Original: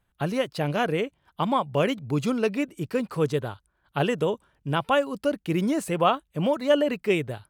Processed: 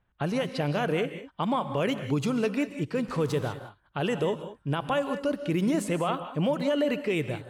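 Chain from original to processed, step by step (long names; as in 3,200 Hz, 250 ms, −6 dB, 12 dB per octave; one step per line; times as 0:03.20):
0:03.08–0:03.49: converter with a step at zero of −38.5 dBFS
low-pass that shuts in the quiet parts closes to 2,800 Hz, open at −21 dBFS
brickwall limiter −18.5 dBFS, peak gain reduction 10 dB
reverb whose tail is shaped and stops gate 220 ms rising, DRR 9.5 dB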